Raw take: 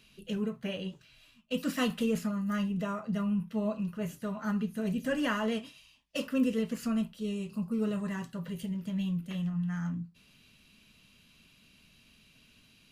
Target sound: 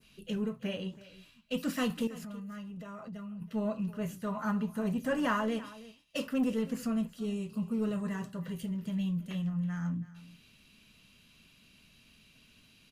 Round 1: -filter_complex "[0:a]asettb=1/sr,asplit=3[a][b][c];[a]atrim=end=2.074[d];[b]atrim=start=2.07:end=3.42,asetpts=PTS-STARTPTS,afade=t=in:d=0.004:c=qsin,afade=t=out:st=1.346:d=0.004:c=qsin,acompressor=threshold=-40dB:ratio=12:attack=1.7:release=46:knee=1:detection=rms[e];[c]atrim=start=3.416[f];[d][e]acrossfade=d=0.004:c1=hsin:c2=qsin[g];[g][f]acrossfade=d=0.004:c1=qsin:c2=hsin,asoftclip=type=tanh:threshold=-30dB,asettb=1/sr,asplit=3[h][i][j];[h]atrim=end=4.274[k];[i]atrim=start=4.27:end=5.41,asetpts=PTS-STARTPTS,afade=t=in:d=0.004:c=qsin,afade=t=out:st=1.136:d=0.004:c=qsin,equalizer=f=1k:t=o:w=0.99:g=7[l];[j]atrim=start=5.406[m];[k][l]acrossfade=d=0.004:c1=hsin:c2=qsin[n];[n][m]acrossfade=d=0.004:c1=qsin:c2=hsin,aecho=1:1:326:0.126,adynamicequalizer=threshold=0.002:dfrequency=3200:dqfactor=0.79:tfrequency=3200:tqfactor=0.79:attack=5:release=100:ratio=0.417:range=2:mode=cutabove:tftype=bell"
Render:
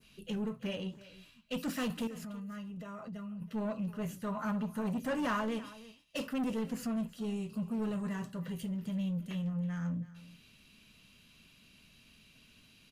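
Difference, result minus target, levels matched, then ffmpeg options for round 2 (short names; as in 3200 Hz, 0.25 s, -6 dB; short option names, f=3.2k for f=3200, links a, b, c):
soft clip: distortion +10 dB
-filter_complex "[0:a]asettb=1/sr,asplit=3[a][b][c];[a]atrim=end=2.074[d];[b]atrim=start=2.07:end=3.42,asetpts=PTS-STARTPTS,afade=t=in:d=0.004:c=qsin,afade=t=out:st=1.346:d=0.004:c=qsin,acompressor=threshold=-40dB:ratio=12:attack=1.7:release=46:knee=1:detection=rms[e];[c]atrim=start=3.416[f];[d][e]acrossfade=d=0.004:c1=hsin:c2=qsin[g];[g][f]acrossfade=d=0.004:c1=qsin:c2=hsin,asoftclip=type=tanh:threshold=-22dB,asettb=1/sr,asplit=3[h][i][j];[h]atrim=end=4.274[k];[i]atrim=start=4.27:end=5.41,asetpts=PTS-STARTPTS,afade=t=in:d=0.004:c=qsin,afade=t=out:st=1.136:d=0.004:c=qsin,equalizer=f=1k:t=o:w=0.99:g=7[l];[j]atrim=start=5.406[m];[k][l]acrossfade=d=0.004:c1=hsin:c2=qsin[n];[n][m]acrossfade=d=0.004:c1=qsin:c2=hsin,aecho=1:1:326:0.126,adynamicequalizer=threshold=0.002:dfrequency=3200:dqfactor=0.79:tfrequency=3200:tqfactor=0.79:attack=5:release=100:ratio=0.417:range=2:mode=cutabove:tftype=bell"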